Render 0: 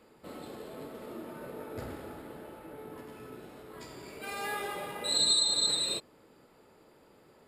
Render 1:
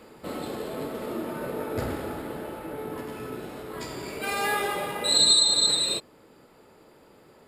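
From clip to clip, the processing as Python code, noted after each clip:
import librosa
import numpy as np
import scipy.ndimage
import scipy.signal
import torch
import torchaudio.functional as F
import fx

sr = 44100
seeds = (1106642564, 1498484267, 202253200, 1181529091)

y = fx.rider(x, sr, range_db=3, speed_s=2.0)
y = F.gain(torch.from_numpy(y), 7.5).numpy()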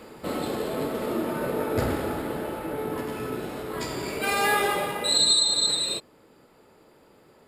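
y = fx.rider(x, sr, range_db=3, speed_s=0.5)
y = F.gain(torch.from_numpy(y), 1.5).numpy()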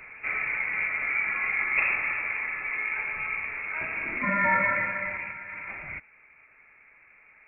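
y = fx.freq_invert(x, sr, carrier_hz=2600)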